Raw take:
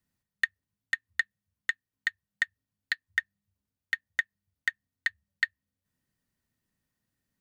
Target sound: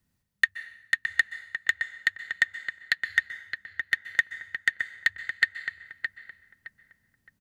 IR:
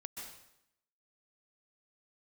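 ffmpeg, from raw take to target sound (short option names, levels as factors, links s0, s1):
-filter_complex "[0:a]lowshelf=f=180:g=6,asplit=2[s0][s1];[s1]adelay=616,lowpass=f=1700:p=1,volume=0.562,asplit=2[s2][s3];[s3]adelay=616,lowpass=f=1700:p=1,volume=0.33,asplit=2[s4][s5];[s5]adelay=616,lowpass=f=1700:p=1,volume=0.33,asplit=2[s6][s7];[s7]adelay=616,lowpass=f=1700:p=1,volume=0.33[s8];[s0][s2][s4][s6][s8]amix=inputs=5:normalize=0,asplit=2[s9][s10];[1:a]atrim=start_sample=2205[s11];[s10][s11]afir=irnorm=-1:irlink=0,volume=0.447[s12];[s9][s12]amix=inputs=2:normalize=0,volume=1.41"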